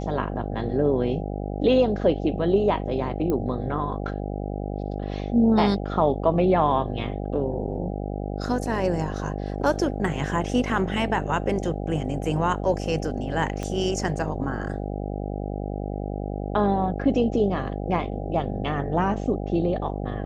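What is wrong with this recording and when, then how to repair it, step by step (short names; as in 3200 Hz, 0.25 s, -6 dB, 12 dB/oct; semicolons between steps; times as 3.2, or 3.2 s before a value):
buzz 50 Hz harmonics 16 -30 dBFS
3.3 pop -15 dBFS
13.63 pop -18 dBFS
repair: de-click; de-hum 50 Hz, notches 16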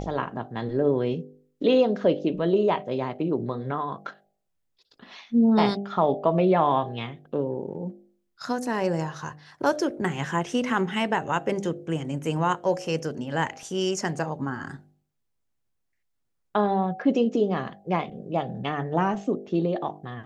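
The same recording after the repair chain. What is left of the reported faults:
3.3 pop
13.63 pop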